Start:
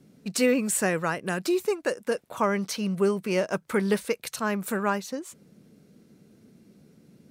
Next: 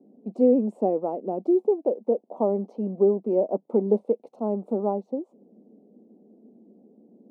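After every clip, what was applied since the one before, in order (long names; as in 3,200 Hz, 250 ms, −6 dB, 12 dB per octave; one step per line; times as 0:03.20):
elliptic band-pass filter 220–780 Hz, stop band 40 dB
level +4.5 dB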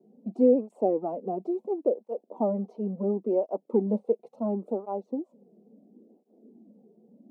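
through-zero flanger with one copy inverted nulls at 0.72 Hz, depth 3.9 ms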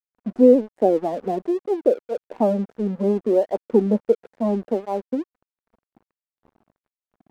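dead-zone distortion −49.5 dBFS
level +7.5 dB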